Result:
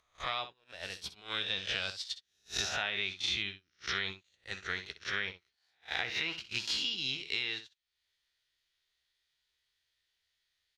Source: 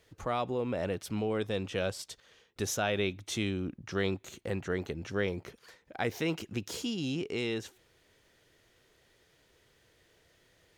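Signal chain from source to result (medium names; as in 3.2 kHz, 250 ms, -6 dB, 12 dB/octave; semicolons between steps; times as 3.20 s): reverse spectral sustain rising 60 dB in 0.85 s; graphic EQ 125/250/500/2000/4000/8000 Hz -8/-12/-11/+3/+11/-4 dB; upward compressor, threshold -34 dBFS; low-pass that closes with the level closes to 2.9 kHz, closed at -26 dBFS; gate -34 dBFS, range -39 dB; early reflections 15 ms -11.5 dB, 63 ms -14 dB; compression 3:1, threshold -36 dBFS, peak gain reduction 9 dB; treble shelf 4.9 kHz +8 dB; trim +2 dB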